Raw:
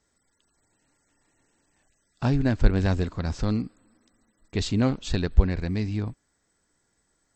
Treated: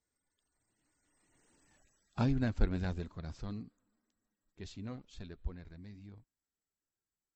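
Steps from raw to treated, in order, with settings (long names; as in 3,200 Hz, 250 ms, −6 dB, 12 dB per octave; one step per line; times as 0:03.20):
spectral magnitudes quantised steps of 15 dB
source passing by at 0:01.64, 13 m/s, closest 3.8 metres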